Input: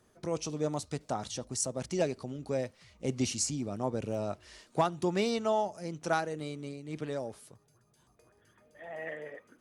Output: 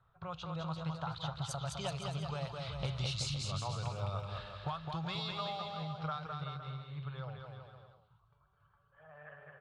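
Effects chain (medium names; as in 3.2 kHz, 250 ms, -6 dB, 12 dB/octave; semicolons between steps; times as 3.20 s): Doppler pass-by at 2.98 s, 25 m/s, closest 11 m; level-controlled noise filter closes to 1.6 kHz, open at -37 dBFS; FFT filter 160 Hz 0 dB, 240 Hz -30 dB, 1.3 kHz +5 dB, 1.9 kHz -10 dB, 3.8 kHz +6 dB, 5.8 kHz -14 dB; compression 5:1, threshold -56 dBFS, peak gain reduction 19.5 dB; on a send: bouncing-ball echo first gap 210 ms, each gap 0.8×, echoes 5; on the sum: trim +18 dB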